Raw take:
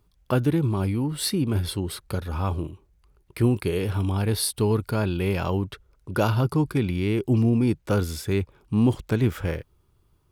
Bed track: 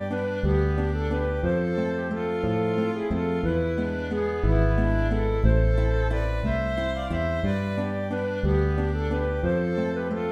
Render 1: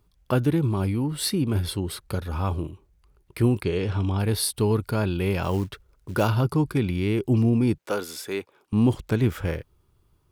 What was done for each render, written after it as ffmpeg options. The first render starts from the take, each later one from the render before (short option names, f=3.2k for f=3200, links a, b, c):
-filter_complex "[0:a]asplit=3[a][b][c];[a]afade=t=out:st=3.62:d=0.02[d];[b]lowpass=f=7.1k:w=0.5412,lowpass=f=7.1k:w=1.3066,afade=t=in:st=3.62:d=0.02,afade=t=out:st=4.18:d=0.02[e];[c]afade=t=in:st=4.18:d=0.02[f];[d][e][f]amix=inputs=3:normalize=0,asettb=1/sr,asplit=3[g][h][i];[g]atrim=end=5.434[j];[h]atrim=start=5.43:end=6.26,asetpts=PTS-STARTPTS,afade=t=in:d=0.004:c=qsin,afade=t=out:st=0.826:d=0.004:c=qsin,acrusher=bits=6:mode=log:mix=0:aa=0.000001[k];[i]atrim=start=6.256[l];[j][k]acrossfade=d=0.004:c1=hsin:c2=qsin[m];[m][l]acrossfade=d=0.004:c1=qsin:c2=hsin,asettb=1/sr,asplit=3[n][o][p];[n]atrim=end=7.784[q];[o]atrim=start=7.78:end=8.73,asetpts=PTS-STARTPTS,afade=t=in:d=0.004:c=qsin,afade=t=out:st=0.946:d=0.004:c=qsin,highpass=380[r];[p]atrim=start=8.726[s];[q][r]acrossfade=d=0.004:c1=hsin:c2=qsin[t];[t][s]acrossfade=d=0.004:c1=qsin:c2=hsin"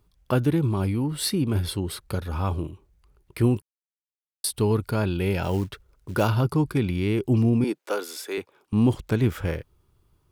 -filter_complex "[0:a]asettb=1/sr,asplit=3[a][b][c];[a]atrim=end=5.194[d];[b]atrim=start=5.19:end=5.62,asetpts=PTS-STARTPTS,afade=t=in:d=0.004:c=qsin,afade=t=out:st=0.426:d=0.004:c=qsin,asuperstop=centerf=1100:order=4:qfactor=5.3[e];[c]atrim=start=5.616[f];[d][e]acrossfade=d=0.004:c1=hsin:c2=qsin[g];[g][f]acrossfade=d=0.004:c1=qsin:c2=hsin,asettb=1/sr,asplit=3[h][i][j];[h]atrim=end=7.644[k];[i]atrim=start=7.64:end=8.38,asetpts=PTS-STARTPTS,afade=t=in:d=0.004:c=qsin,afade=t=out:st=0.736:d=0.004:c=qsin,highpass=f=280:w=0.5412,highpass=f=280:w=1.3066[l];[j]atrim=start=8.376[m];[k][l]acrossfade=d=0.004:c1=hsin:c2=qsin[n];[n][m]acrossfade=d=0.004:c1=qsin:c2=hsin,asplit=3[o][p][q];[o]atrim=end=3.62,asetpts=PTS-STARTPTS,afade=t=out:st=3.616:d=0.004:c=hsin[r];[p]atrim=start=3.62:end=4.44,asetpts=PTS-STARTPTS,volume=0[s];[q]atrim=start=4.44,asetpts=PTS-STARTPTS,afade=t=in:d=0.004:c=hsin[t];[r][s][t]concat=n=3:v=0:a=1"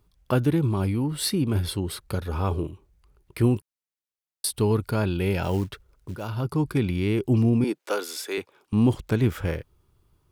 -filter_complex "[0:a]asettb=1/sr,asplit=3[a][b][c];[a]atrim=end=2.274[d];[b]atrim=start=2.27:end=2.67,asetpts=PTS-STARTPTS,afade=t=in:d=0.004:c=qsin,afade=t=out:st=0.396:d=0.004:c=qsin,equalizer=f=420:t=o:w=0.42:g=8[e];[c]atrim=start=2.666[f];[d][e]acrossfade=d=0.004:c1=hsin:c2=qsin[g];[g][f]acrossfade=d=0.004:c1=qsin:c2=hsin,asettb=1/sr,asplit=3[h][i][j];[h]atrim=end=7.804[k];[i]atrim=start=7.8:end=8.76,asetpts=PTS-STARTPTS,afade=t=in:d=0.004:c=qsin,afade=t=out:st=0.956:d=0.004:c=qsin,equalizer=f=4.7k:w=0.37:g=3[l];[j]atrim=start=8.756[m];[k][l]acrossfade=d=0.004:c1=hsin:c2=qsin[n];[n][m]acrossfade=d=0.004:c1=qsin:c2=hsin,asplit=2[o][p];[o]atrim=end=6.16,asetpts=PTS-STARTPTS,afade=t=out:st=6.156:d=0.004:c=hsin:silence=0.149624[q];[p]atrim=start=6.16,asetpts=PTS-STARTPTS,afade=t=in:d=0.56:silence=0.149624[r];[q][r]concat=n=2:v=0:a=1"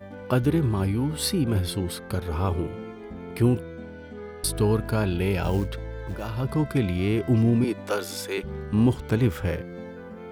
-filter_complex "[1:a]volume=-12.5dB[a];[0:a][a]amix=inputs=2:normalize=0"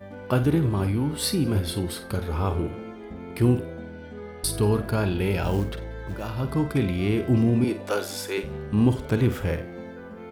-filter_complex "[0:a]asplit=2[a][b];[b]adelay=49,volume=-10.5dB[c];[a][c]amix=inputs=2:normalize=0,asplit=4[d][e][f][g];[e]adelay=93,afreqshift=140,volume=-20.5dB[h];[f]adelay=186,afreqshift=280,volume=-27.2dB[i];[g]adelay=279,afreqshift=420,volume=-34dB[j];[d][h][i][j]amix=inputs=4:normalize=0"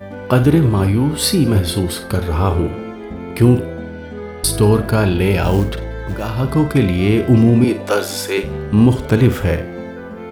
-af "volume=9.5dB,alimiter=limit=-2dB:level=0:latency=1"